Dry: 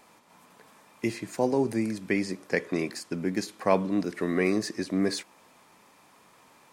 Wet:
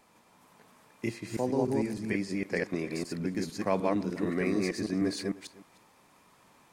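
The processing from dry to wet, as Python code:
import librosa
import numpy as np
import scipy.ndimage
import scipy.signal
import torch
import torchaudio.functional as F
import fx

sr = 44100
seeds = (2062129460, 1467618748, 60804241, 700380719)

p1 = fx.reverse_delay(x, sr, ms=152, wet_db=-1.0)
p2 = fx.low_shelf(p1, sr, hz=150.0, db=7.5)
p3 = p2 + fx.echo_single(p2, sr, ms=306, db=-21.0, dry=0)
y = p3 * librosa.db_to_amplitude(-6.5)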